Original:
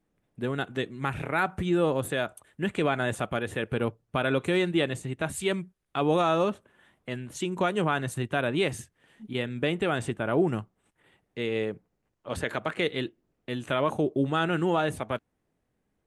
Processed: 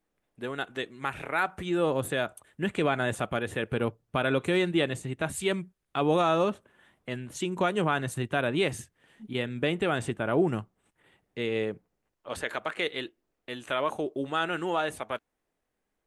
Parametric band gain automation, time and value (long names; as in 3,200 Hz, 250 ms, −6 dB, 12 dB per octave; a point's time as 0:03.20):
parametric band 120 Hz 2.7 octaves
0:01.55 −11.5 dB
0:01.99 −1 dB
0:11.71 −1 dB
0:12.46 −13 dB